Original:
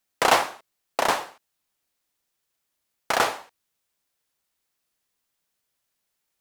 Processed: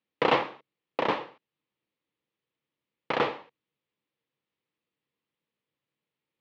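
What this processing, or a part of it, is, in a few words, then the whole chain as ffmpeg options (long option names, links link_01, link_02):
guitar cabinet: -af "highpass=85,equalizer=frequency=140:width_type=q:width=4:gain=10,equalizer=frequency=210:width_type=q:width=4:gain=5,equalizer=frequency=310:width_type=q:width=4:gain=7,equalizer=frequency=480:width_type=q:width=4:gain=7,equalizer=frequency=700:width_type=q:width=4:gain=-7,equalizer=frequency=1500:width_type=q:width=4:gain=-7,lowpass=frequency=3400:width=0.5412,lowpass=frequency=3400:width=1.3066,volume=-3.5dB"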